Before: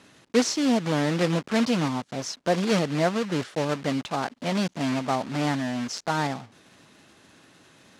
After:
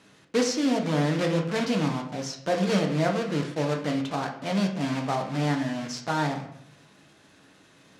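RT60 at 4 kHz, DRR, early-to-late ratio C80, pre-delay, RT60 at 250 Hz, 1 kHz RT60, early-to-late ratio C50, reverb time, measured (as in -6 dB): 0.45 s, 2.5 dB, 11.0 dB, 6 ms, 0.80 s, 0.60 s, 8.0 dB, 0.65 s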